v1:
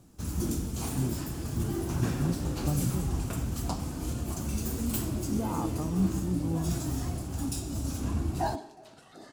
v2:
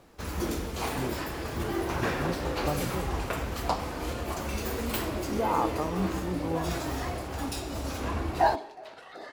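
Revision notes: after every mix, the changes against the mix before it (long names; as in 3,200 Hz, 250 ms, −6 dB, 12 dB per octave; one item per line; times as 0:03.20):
second sound: send −8.0 dB
master: add octave-band graphic EQ 125/250/500/1,000/2,000/4,000/8,000 Hz −7/−4/+10/+6/+11/+5/−6 dB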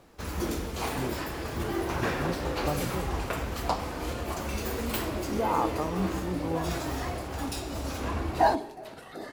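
second sound: remove three-way crossover with the lows and the highs turned down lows −13 dB, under 450 Hz, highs −15 dB, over 6,600 Hz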